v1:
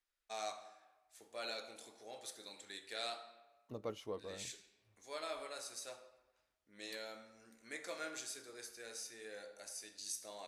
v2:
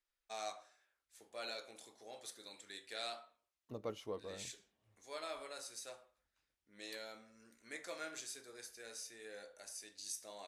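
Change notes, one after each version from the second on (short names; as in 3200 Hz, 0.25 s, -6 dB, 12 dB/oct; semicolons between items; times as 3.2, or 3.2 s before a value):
reverb: off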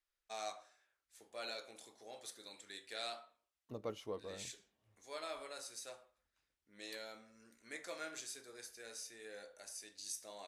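none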